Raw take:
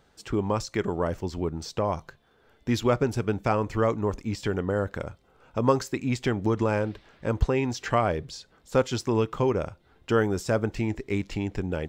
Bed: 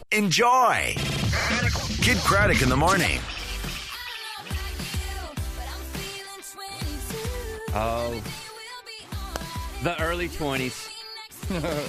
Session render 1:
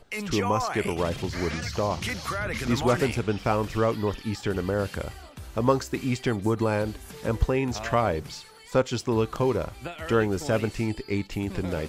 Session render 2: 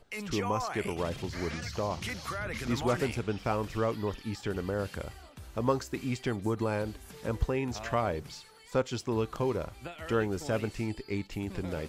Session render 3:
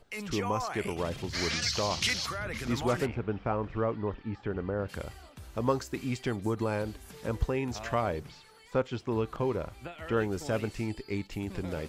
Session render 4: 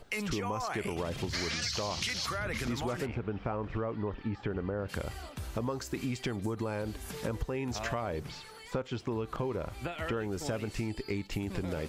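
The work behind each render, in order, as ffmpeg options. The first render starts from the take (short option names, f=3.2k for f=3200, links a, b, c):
-filter_complex "[1:a]volume=-10.5dB[a];[0:a][a]amix=inputs=2:normalize=0"
-af "volume=-6dB"
-filter_complex "[0:a]asplit=3[a][b][c];[a]afade=t=out:st=1.33:d=0.02[d];[b]equalizer=f=4.6k:t=o:w=2.3:g=14.5,afade=t=in:st=1.33:d=0.02,afade=t=out:st=2.25:d=0.02[e];[c]afade=t=in:st=2.25:d=0.02[f];[d][e][f]amix=inputs=3:normalize=0,asplit=3[g][h][i];[g]afade=t=out:st=3.05:d=0.02[j];[h]lowpass=1.8k,afade=t=in:st=3.05:d=0.02,afade=t=out:st=4.88:d=0.02[k];[i]afade=t=in:st=4.88:d=0.02[l];[j][k][l]amix=inputs=3:normalize=0,asettb=1/sr,asplit=3[m][n][o];[m]atrim=end=8.234[p];[n]atrim=start=8.23:end=10.17,asetpts=PTS-STARTPTS,afade=t=in:d=0.004:c=qsin,afade=t=out:st=1.936:d=0.004:c=qsin,acrossover=split=3500[q][r];[r]acompressor=threshold=-60dB:ratio=4:attack=1:release=60[s];[q][s]amix=inputs=2:normalize=0[t];[o]atrim=start=10.166[u];[p][t]acrossfade=d=0.004:c1=hsin:c2=qsin[v];[v][u]acrossfade=d=0.004:c1=qsin:c2=hsin"
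-filter_complex "[0:a]asplit=2[a][b];[b]alimiter=level_in=2.5dB:limit=-24dB:level=0:latency=1:release=56,volume=-2.5dB,volume=2dB[c];[a][c]amix=inputs=2:normalize=0,acompressor=threshold=-31dB:ratio=6"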